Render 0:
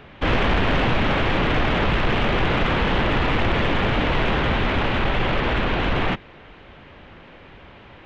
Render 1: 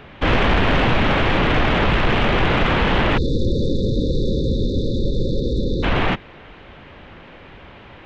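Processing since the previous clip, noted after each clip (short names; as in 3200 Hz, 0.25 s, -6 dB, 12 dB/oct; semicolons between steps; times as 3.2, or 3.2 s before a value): spectral delete 3.17–5.83, 560–3500 Hz; gain +3 dB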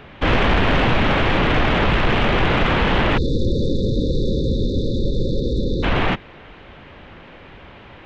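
nothing audible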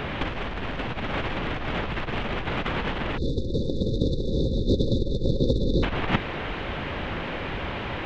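negative-ratio compressor -24 dBFS, ratio -0.5; gain +1.5 dB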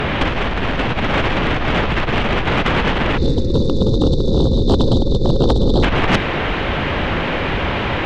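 sine folder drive 8 dB, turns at -8.5 dBFS; on a send at -22 dB: reverb RT60 1.8 s, pre-delay 5 ms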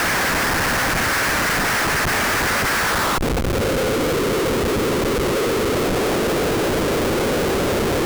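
band-pass sweep 1700 Hz -> 430 Hz, 2.79–4.15; Schmitt trigger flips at -33 dBFS; gain +6 dB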